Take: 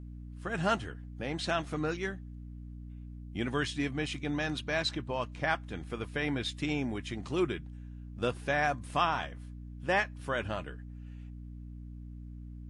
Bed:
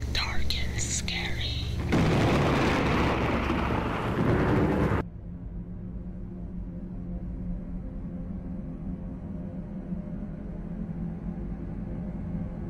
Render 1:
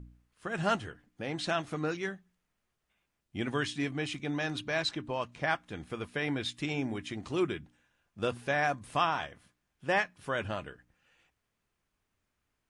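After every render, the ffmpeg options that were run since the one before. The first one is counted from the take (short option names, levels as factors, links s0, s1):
-af "bandreject=f=60:t=h:w=4,bandreject=f=120:t=h:w=4,bandreject=f=180:t=h:w=4,bandreject=f=240:t=h:w=4,bandreject=f=300:t=h:w=4"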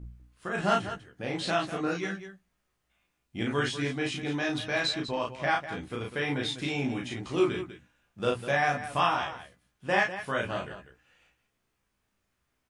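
-filter_complex "[0:a]asplit=2[s0][s1];[s1]adelay=16,volume=0.562[s2];[s0][s2]amix=inputs=2:normalize=0,aecho=1:1:34.99|198.3:0.794|0.282"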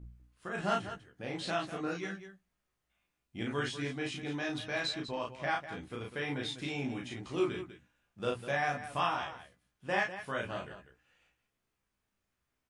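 -af "volume=0.501"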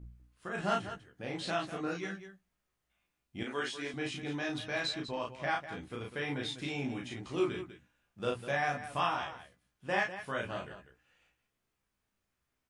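-filter_complex "[0:a]asettb=1/sr,asplit=3[s0][s1][s2];[s0]atrim=end=3.434[s3];[s1]atrim=start=3.43:end=3.94,asetpts=PTS-STARTPTS,afade=t=in:d=0.004:c=qsin,afade=t=out:st=0.506:d=0.004:c=qsin,highpass=320[s4];[s2]atrim=start=3.936[s5];[s3][s4]acrossfade=d=0.004:c1=hsin:c2=qsin[s6];[s6][s5]acrossfade=d=0.004:c1=qsin:c2=hsin"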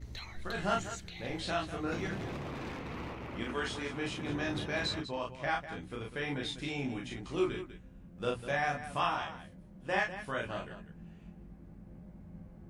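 -filter_complex "[1:a]volume=0.15[s0];[0:a][s0]amix=inputs=2:normalize=0"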